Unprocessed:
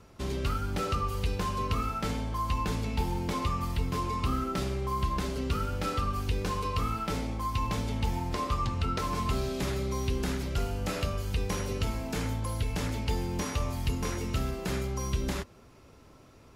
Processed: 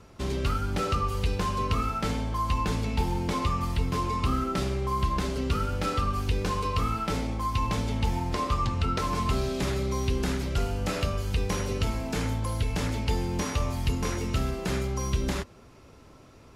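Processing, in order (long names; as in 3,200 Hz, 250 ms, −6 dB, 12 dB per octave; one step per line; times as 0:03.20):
Bessel low-pass filter 12,000 Hz, order 2
level +3 dB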